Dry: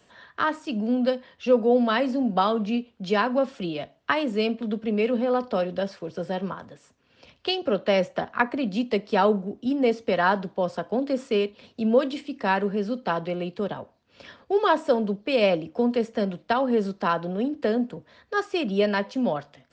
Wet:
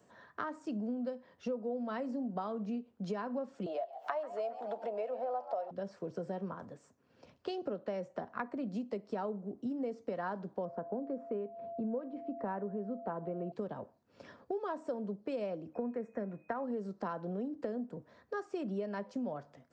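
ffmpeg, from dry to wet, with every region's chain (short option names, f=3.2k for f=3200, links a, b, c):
-filter_complex "[0:a]asettb=1/sr,asplit=3[a][b][c];[a]atrim=end=3.664[d];[b]atrim=start=3.66:end=5.71,asetpts=PTS-STARTPTS,afade=t=in:d=0.004:c=qsin,afade=t=out:st=2.046:d=0.004:c=qsin,highpass=f=670:t=q:w=7.5,acompressor=mode=upward:threshold=-25dB:ratio=2.5:attack=3.2:release=140:knee=2.83:detection=peak,asplit=5[e][f][g][h][i];[f]adelay=136,afreqshift=85,volume=-16dB[j];[g]adelay=272,afreqshift=170,volume=-22.2dB[k];[h]adelay=408,afreqshift=255,volume=-28.4dB[l];[i]adelay=544,afreqshift=340,volume=-34.6dB[m];[e][j][k][l][m]amix=inputs=5:normalize=0,atrim=end_sample=90405[n];[c]atrim=start=5.706[o];[d][n]acrossfade=d=0.004:c1=hsin:c2=qsin[p];[p][o]acrossfade=d=0.004:c1=qsin:c2=hsin,asettb=1/sr,asplit=3[q][r][s];[q]atrim=end=10.654[t];[r]atrim=start=10.65:end=13.52,asetpts=PTS-STARTPTS,afade=t=in:d=0.004:c=qsin,afade=t=out:st=2.866:d=0.004:c=qsin,lowpass=1.5k,aeval=exprs='val(0)+0.0158*sin(2*PI*680*n/s)':c=same[u];[s]atrim=start=13.516[v];[t][u]acrossfade=d=0.004:c1=hsin:c2=qsin[w];[w][v]acrossfade=d=0.004:c1=qsin:c2=hsin,asettb=1/sr,asplit=3[x][y][z];[x]atrim=end=15.744[aa];[y]atrim=start=15.74:end=16.64,asetpts=PTS-STARTPTS,afade=t=in:d=0.004:c=qsin,afade=t=out:st=0.896:d=0.004:c=qsin,asuperstop=centerf=4700:order=4:qfactor=5.8,highshelf=f=2.5k:t=q:w=3:g=-7.5,aeval=exprs='val(0)+0.00224*sin(2*PI*2500*n/s)':c=same[ab];[z]atrim=start=16.636[ac];[aa][ab]acrossfade=d=0.004:c1=hsin:c2=qsin[ad];[ad][ac]acrossfade=d=0.004:c1=qsin:c2=hsin,highpass=99,equalizer=f=3.2k:t=o:w=1.7:g=-14.5,acompressor=threshold=-32dB:ratio=6,volume=-3dB"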